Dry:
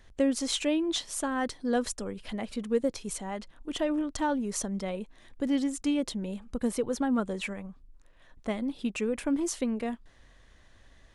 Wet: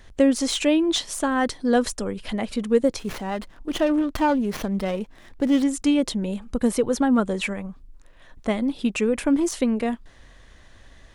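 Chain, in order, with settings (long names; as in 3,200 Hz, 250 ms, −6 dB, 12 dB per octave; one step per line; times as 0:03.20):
de-essing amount 65%
0:02.99–0:05.63: windowed peak hold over 5 samples
level +8 dB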